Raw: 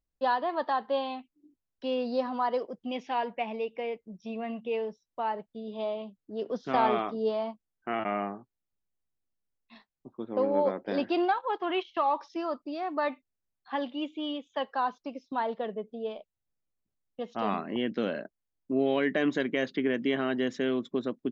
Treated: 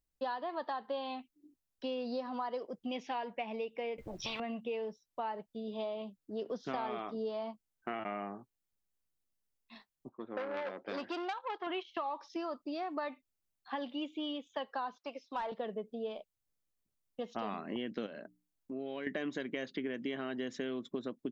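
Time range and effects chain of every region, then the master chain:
0:03.98–0:04.40: bass and treble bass +9 dB, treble −13 dB + every bin compressed towards the loudest bin 10 to 1
0:10.09–0:11.67: low-pass that shuts in the quiet parts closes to 1,500 Hz, open at −22 dBFS + low-shelf EQ 310 Hz −9.5 dB + saturating transformer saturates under 1,500 Hz
0:14.96–0:15.52: high-pass filter 810 Hz 6 dB per octave + mid-hump overdrive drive 14 dB, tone 1,700 Hz, clips at −21 dBFS
0:18.06–0:19.07: mains-hum notches 60/120/180/240/300 Hz + downward compressor 2 to 1, threshold −44 dBFS
whole clip: high-shelf EQ 4,900 Hz +6 dB; downward compressor, threshold −33 dBFS; level −1.5 dB

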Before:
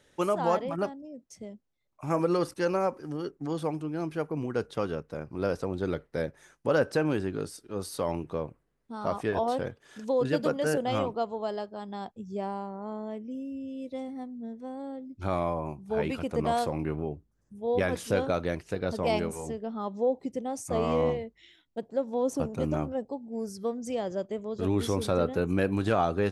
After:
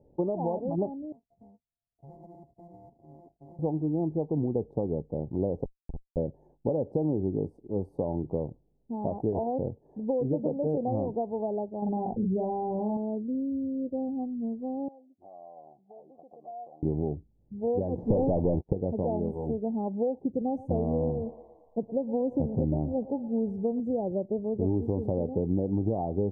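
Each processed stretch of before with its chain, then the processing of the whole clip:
0:01.12–0:03.59: samples sorted by size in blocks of 64 samples + guitar amp tone stack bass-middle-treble 5-5-5 + downward compressor 2.5 to 1, threshold −45 dBFS
0:05.64–0:06.17: high-pass filter 48 Hz + downward compressor 5 to 1, threshold −35 dBFS + comparator with hysteresis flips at −32.5 dBFS
0:11.82–0:12.97: double-tracking delay 43 ms −4 dB + envelope flattener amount 70%
0:14.88–0:16.83: parametric band 85 Hz −13.5 dB 0.49 octaves + downward compressor 10 to 1, threshold −36 dBFS + formant filter a
0:17.98–0:18.73: leveller curve on the samples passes 5 + high-frequency loss of the air 230 metres + expander for the loud parts, over −31 dBFS
0:20.41–0:23.80: low-shelf EQ 160 Hz +6 dB + feedback echo with a high-pass in the loop 115 ms, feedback 77%, high-pass 530 Hz, level −15 dB
whole clip: downward compressor, threshold −29 dBFS; elliptic low-pass filter 850 Hz, stop band 40 dB; low-shelf EQ 500 Hz +8.5 dB

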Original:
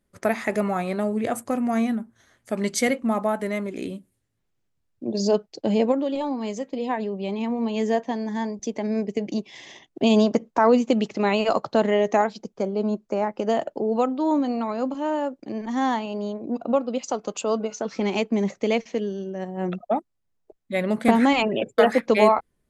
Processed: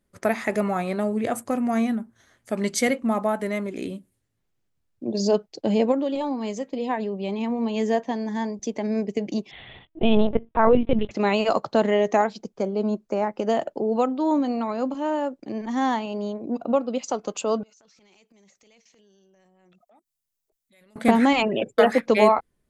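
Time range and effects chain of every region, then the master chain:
0:09.51–0:11.11: linear-prediction vocoder at 8 kHz pitch kept + parametric band 120 Hz +6.5 dB 1.2 octaves
0:17.63–0:20.96: first-order pre-emphasis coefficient 0.9 + transient designer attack −9 dB, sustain +7 dB + downward compressor 4 to 1, threshold −58 dBFS
whole clip: no processing

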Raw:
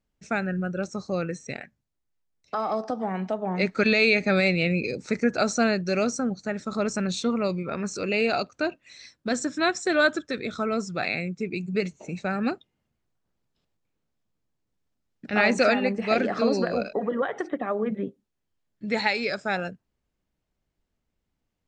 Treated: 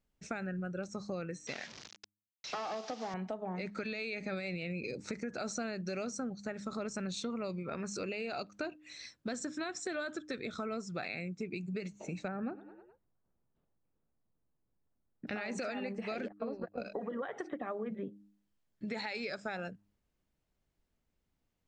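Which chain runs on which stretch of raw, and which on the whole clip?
0:01.47–0:03.14: linear delta modulator 32 kbit/s, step −41.5 dBFS + high-pass filter 340 Hz 6 dB per octave + high-shelf EQ 3,000 Hz +11.5 dB
0:12.28–0:15.27: low-pass filter 1,300 Hz + echo with shifted repeats 105 ms, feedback 57%, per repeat +33 Hz, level −21 dB
0:16.28–0:16.78: noise gate −24 dBFS, range −58 dB + low-pass filter 2,000 Hz + upward compression, threshold −36 dBFS
whole clip: hum removal 101.6 Hz, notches 3; brickwall limiter −17.5 dBFS; downward compressor 4 to 1, threshold −35 dBFS; level −2 dB

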